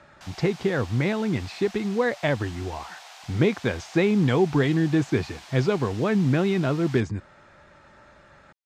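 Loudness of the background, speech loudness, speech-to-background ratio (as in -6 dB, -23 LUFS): -44.0 LUFS, -24.5 LUFS, 19.5 dB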